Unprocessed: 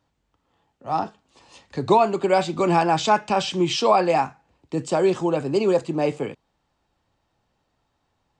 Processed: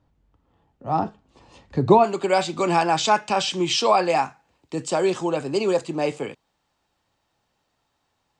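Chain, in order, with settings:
spectral tilt −2.5 dB per octave, from 0:02.03 +1.5 dB per octave

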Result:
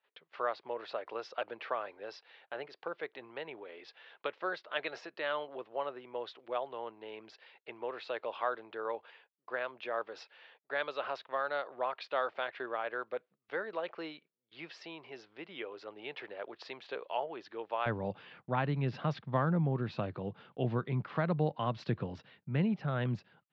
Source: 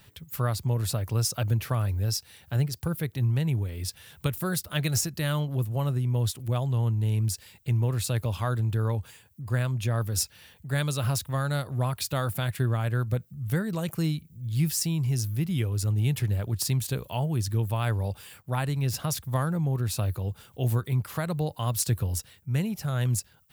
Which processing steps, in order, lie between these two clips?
high-pass filter 440 Hz 24 dB per octave, from 0:17.86 160 Hz
noise gate −56 dBFS, range −22 dB
Bessel low-pass filter 2,200 Hz, order 8

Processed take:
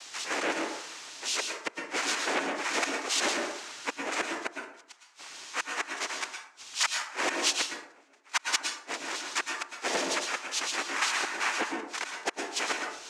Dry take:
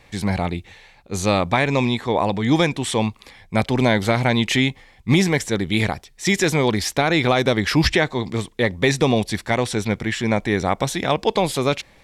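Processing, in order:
Chebyshev high-pass filter 730 Hz, order 5
background noise blue −39 dBFS
gate with flip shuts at −12 dBFS, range −41 dB
cochlear-implant simulation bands 4
dense smooth reverb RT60 0.55 s, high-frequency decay 0.6×, pre-delay 90 ms, DRR 3 dB
wrong playback speed 48 kHz file played as 44.1 kHz
saturating transformer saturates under 2,200 Hz

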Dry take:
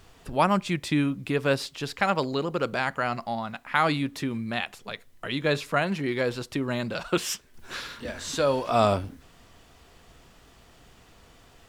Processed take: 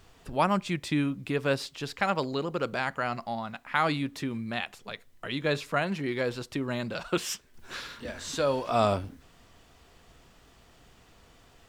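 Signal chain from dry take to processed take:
parametric band 11,000 Hz −3.5 dB 0.24 octaves
level −3 dB

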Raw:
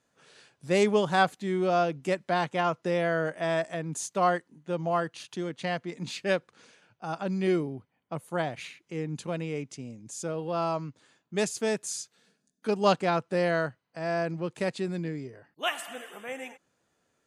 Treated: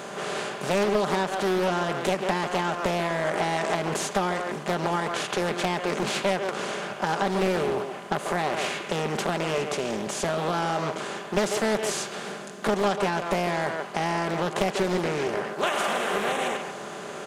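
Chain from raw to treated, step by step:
compressor on every frequency bin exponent 0.4
far-end echo of a speakerphone 140 ms, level −7 dB
downward compressor 10 to 1, threshold −21 dBFS, peak gain reduction 9 dB
comb filter 5 ms, depth 30%
highs frequency-modulated by the lows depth 0.64 ms

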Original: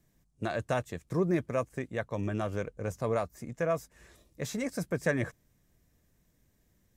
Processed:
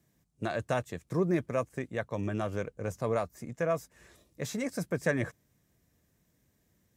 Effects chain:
high-pass filter 71 Hz

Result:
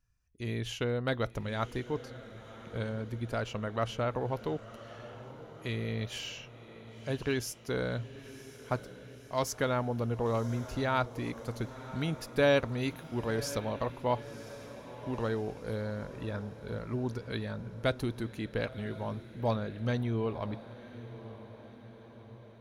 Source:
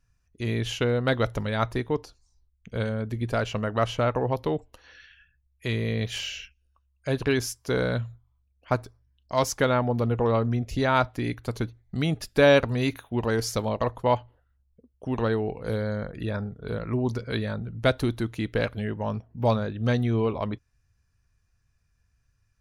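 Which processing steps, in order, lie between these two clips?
high-shelf EQ 12,000 Hz +5 dB
feedback delay with all-pass diffusion 1,027 ms, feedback 56%, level −14.5 dB
level −7.5 dB

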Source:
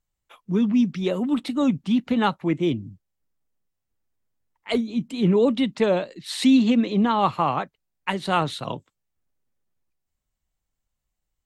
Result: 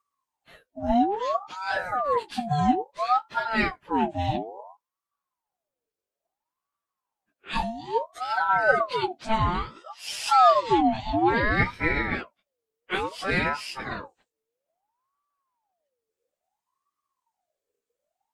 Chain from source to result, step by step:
time stretch by phase vocoder 1.6×
ring modulator whose carrier an LFO sweeps 800 Hz, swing 45%, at 0.59 Hz
level +2.5 dB

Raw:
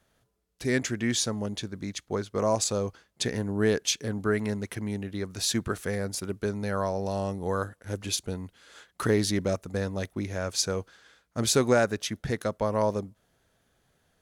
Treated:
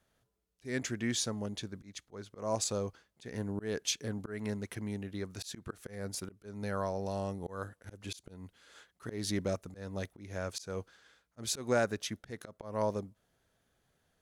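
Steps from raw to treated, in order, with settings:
volume swells 206 ms
level −6 dB

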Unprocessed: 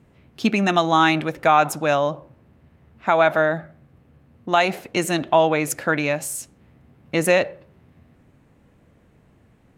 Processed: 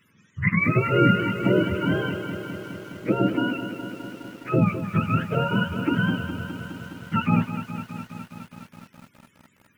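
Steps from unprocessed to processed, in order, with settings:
frequency axis turned over on the octave scale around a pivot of 670 Hz
phaser with its sweep stopped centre 1,800 Hz, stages 4
feedback echo at a low word length 207 ms, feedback 80%, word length 8 bits, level −10 dB
level +1 dB

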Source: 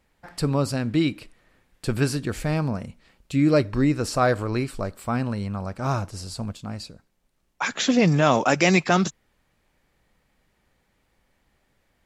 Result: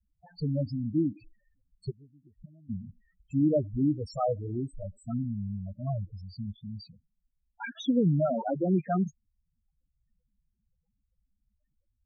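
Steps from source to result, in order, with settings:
0:01.90–0:02.70: gate with flip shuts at −20 dBFS, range −26 dB
spectral peaks only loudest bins 4
level −4.5 dB
AAC 64 kbit/s 44,100 Hz

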